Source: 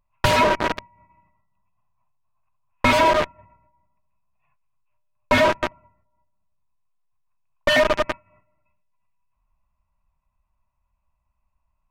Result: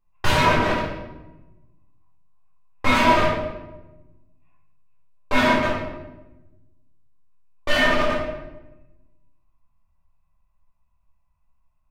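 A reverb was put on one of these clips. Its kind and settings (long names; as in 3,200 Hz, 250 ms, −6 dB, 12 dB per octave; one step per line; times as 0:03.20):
rectangular room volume 460 cubic metres, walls mixed, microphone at 3.7 metres
level −9 dB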